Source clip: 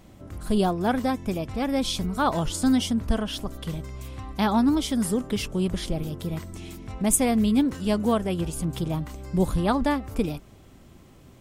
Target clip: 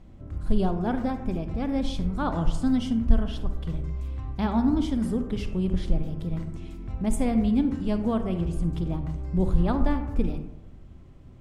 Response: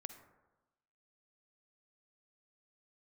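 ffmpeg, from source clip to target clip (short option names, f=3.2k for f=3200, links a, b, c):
-filter_complex "[0:a]aemphasis=mode=reproduction:type=bsi,bandreject=f=50:t=h:w=6,bandreject=f=100:t=h:w=6,bandreject=f=150:t=h:w=6,bandreject=f=200:t=h:w=6[a];[1:a]atrim=start_sample=2205,asetrate=52920,aresample=44100[b];[a][b]afir=irnorm=-1:irlink=0"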